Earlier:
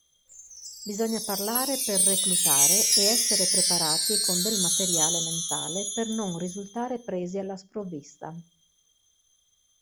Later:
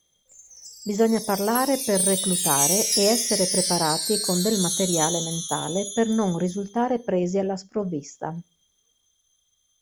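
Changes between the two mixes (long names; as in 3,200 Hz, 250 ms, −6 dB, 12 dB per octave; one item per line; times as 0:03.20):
speech +8.5 dB
reverb: off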